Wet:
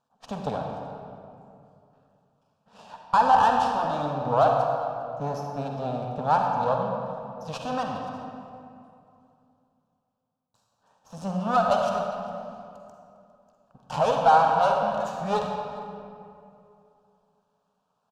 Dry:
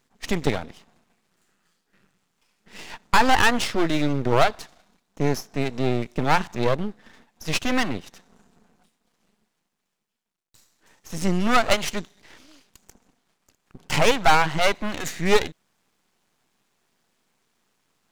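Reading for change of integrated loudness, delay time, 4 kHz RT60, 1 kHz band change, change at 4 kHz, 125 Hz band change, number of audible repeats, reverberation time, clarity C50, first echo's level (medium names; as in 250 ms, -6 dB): -2.0 dB, 404 ms, 1.5 s, +2.5 dB, -12.0 dB, -5.5 dB, 1, 2.6 s, 1.5 dB, -20.5 dB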